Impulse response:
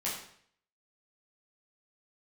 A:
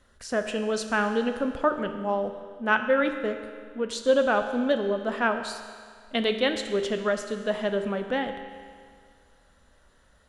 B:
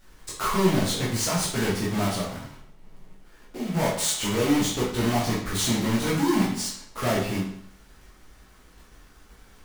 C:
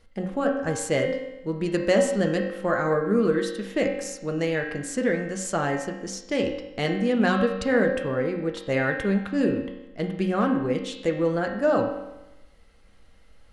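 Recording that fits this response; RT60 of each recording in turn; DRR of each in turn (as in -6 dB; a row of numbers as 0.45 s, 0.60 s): B; 2.0 s, 0.60 s, 0.95 s; 6.0 dB, -7.5 dB, 2.0 dB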